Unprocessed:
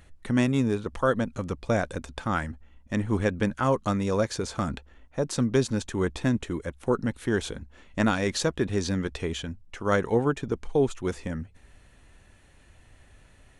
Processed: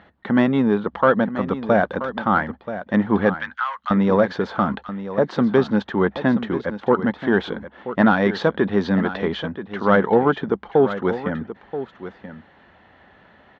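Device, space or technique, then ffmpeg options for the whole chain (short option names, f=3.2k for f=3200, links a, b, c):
overdrive pedal into a guitar cabinet: -filter_complex "[0:a]asplit=2[a][b];[b]highpass=f=720:p=1,volume=13dB,asoftclip=type=tanh:threshold=-9dB[c];[a][c]amix=inputs=2:normalize=0,lowpass=f=2.2k:p=1,volume=-6dB,highpass=95,equalizer=f=110:t=q:w=4:g=-5,equalizer=f=200:t=q:w=4:g=8,equalizer=f=810:t=q:w=4:g=4,equalizer=f=2.5k:t=q:w=4:g=-10,lowpass=f=3.5k:w=0.5412,lowpass=f=3.5k:w=1.3066,asettb=1/sr,asplit=3[d][e][f];[d]atrim=end=3.344[g];[e]atrim=start=3.34:end=3.91,asetpts=PTS-STARTPTS,afade=t=in:d=0.004:c=qsin,afade=t=out:st=0.566:d=0.004:c=qsin,highpass=f=1.3k:w=0.5412,highpass=f=1.3k:w=1.3066[h];[f]atrim=start=3.906[i];[g][h]acrossfade=d=0.004:c1=hsin:c2=qsin[j];[j][i]acrossfade=d=0.004:c1=qsin:c2=hsin,aecho=1:1:980:0.251,volume=5dB"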